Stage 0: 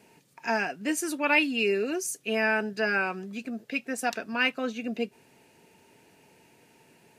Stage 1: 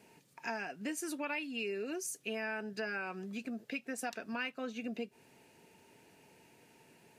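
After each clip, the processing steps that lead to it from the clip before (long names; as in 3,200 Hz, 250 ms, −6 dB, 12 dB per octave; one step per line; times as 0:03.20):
downward compressor 4 to 1, threshold −33 dBFS, peak gain reduction 13.5 dB
level −3.5 dB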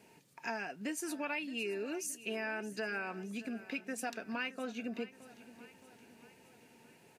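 repeating echo 620 ms, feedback 55%, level −17 dB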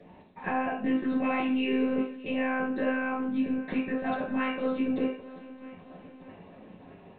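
one-pitch LPC vocoder at 8 kHz 260 Hz
convolution reverb RT60 0.50 s, pre-delay 3 ms, DRR −4.5 dB
level −3.5 dB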